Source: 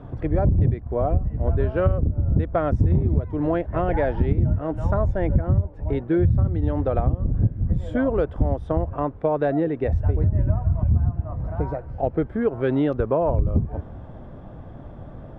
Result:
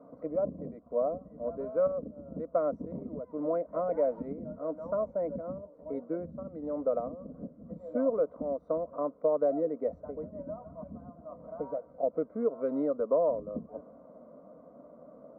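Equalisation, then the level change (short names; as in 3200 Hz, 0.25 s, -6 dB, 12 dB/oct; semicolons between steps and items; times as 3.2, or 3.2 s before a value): running mean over 26 samples; HPF 400 Hz 12 dB/oct; fixed phaser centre 550 Hz, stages 8; 0.0 dB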